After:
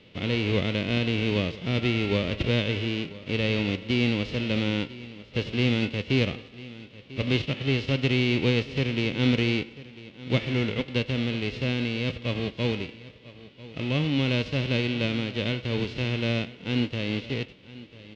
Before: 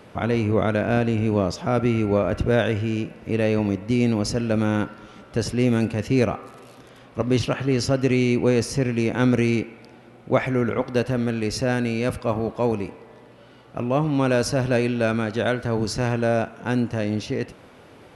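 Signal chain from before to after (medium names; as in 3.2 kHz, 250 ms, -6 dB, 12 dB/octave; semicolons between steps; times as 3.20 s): formants flattened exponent 0.3; low-pass 3.2 kHz 24 dB/octave; high-order bell 1.1 kHz -14.5 dB; band-stop 2.4 kHz, Q 18; delay 995 ms -18 dB; trim -1.5 dB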